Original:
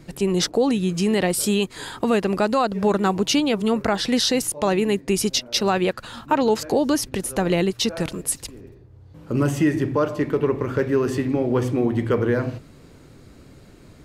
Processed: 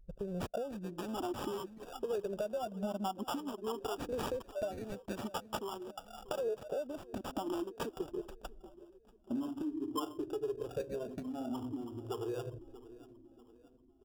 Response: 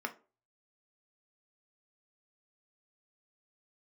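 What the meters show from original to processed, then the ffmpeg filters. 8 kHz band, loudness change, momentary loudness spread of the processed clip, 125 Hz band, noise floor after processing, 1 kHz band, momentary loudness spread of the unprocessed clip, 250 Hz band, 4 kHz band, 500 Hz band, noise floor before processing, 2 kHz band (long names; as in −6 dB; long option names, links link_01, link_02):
−26.0 dB, −18.0 dB, 12 LU, −22.0 dB, −63 dBFS, −16.0 dB, 5 LU, −18.5 dB, −22.5 dB, −16.5 dB, −48 dBFS, −22.5 dB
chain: -filter_complex "[0:a]afftfilt=real='re*pow(10,22/40*sin(2*PI*(0.58*log(max(b,1)*sr/1024/100)/log(2)-(0.48)*(pts-256)/sr)))':imag='im*pow(10,22/40*sin(2*PI*(0.58*log(max(b,1)*sr/1024/100)/log(2)-(0.48)*(pts-256)/sr)))':win_size=1024:overlap=0.75,anlmdn=1000,bass=frequency=250:gain=-8,treble=frequency=4000:gain=-13,aecho=1:1:3:0.38,acompressor=threshold=-27dB:ratio=6,asplit=2[link_01][link_02];[link_02]adelay=636,lowpass=frequency=2500:poles=1,volume=-18.5dB,asplit=2[link_03][link_04];[link_04]adelay=636,lowpass=frequency=2500:poles=1,volume=0.53,asplit=2[link_05][link_06];[link_06]adelay=636,lowpass=frequency=2500:poles=1,volume=0.53,asplit=2[link_07][link_08];[link_08]adelay=636,lowpass=frequency=2500:poles=1,volume=0.53[link_09];[link_03][link_05][link_07][link_09]amix=inputs=4:normalize=0[link_10];[link_01][link_10]amix=inputs=2:normalize=0,asoftclip=type=tanh:threshold=-17.5dB,flanger=delay=1.4:depth=3.8:regen=-40:speed=0.17:shape=sinusoidal,acrossover=split=850[link_11][link_12];[link_12]acrusher=samples=21:mix=1:aa=0.000001[link_13];[link_11][link_13]amix=inputs=2:normalize=0,volume=-3.5dB"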